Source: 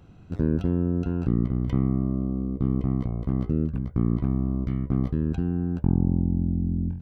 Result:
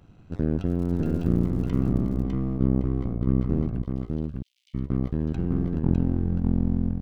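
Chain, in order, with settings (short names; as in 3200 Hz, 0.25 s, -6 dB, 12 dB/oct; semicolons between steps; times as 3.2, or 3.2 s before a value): half-wave gain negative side -7 dB; 3.82–4.74 steep high-pass 2800 Hz 48 dB/oct; on a send: echo 0.604 s -3 dB; 0.66–2.22 on the sum: crackle 100/s -39 dBFS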